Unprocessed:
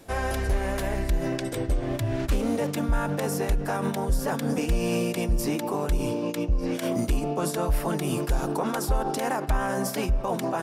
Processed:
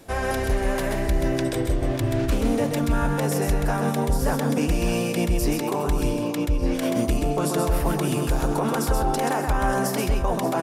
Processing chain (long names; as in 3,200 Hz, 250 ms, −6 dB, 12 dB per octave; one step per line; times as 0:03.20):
multi-tap delay 130/587 ms −4.5/−13 dB
level +2 dB